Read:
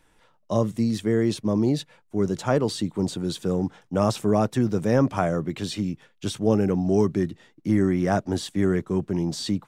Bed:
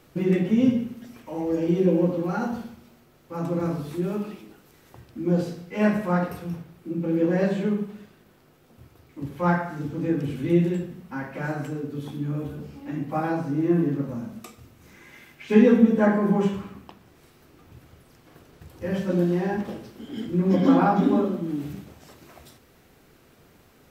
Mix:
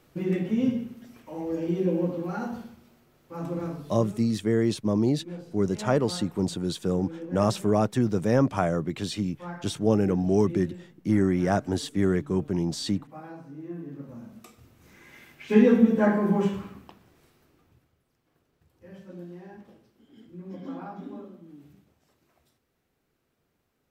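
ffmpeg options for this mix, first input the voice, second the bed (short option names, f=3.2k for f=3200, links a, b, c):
-filter_complex "[0:a]adelay=3400,volume=-1.5dB[a];[1:a]volume=9.5dB,afade=t=out:st=3.53:d=0.64:silence=0.266073,afade=t=in:st=13.83:d=1.4:silence=0.188365,afade=t=out:st=16.65:d=1.27:silence=0.133352[b];[a][b]amix=inputs=2:normalize=0"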